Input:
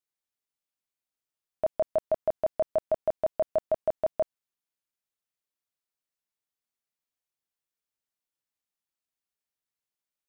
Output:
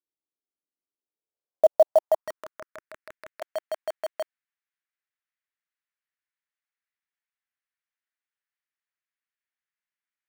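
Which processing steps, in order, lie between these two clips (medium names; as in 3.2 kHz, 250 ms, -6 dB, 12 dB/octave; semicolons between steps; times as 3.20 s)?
bass shelf 170 Hz -9 dB; band-pass sweep 310 Hz -> 1.8 kHz, 0.90–2.98 s; dynamic bell 360 Hz, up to -4 dB, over -52 dBFS, Q 3.6; 2.21–3.42 s: static phaser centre 1.8 kHz, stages 4; in parallel at -3 dB: bit crusher 7-bit; on the sum: trim +7 dB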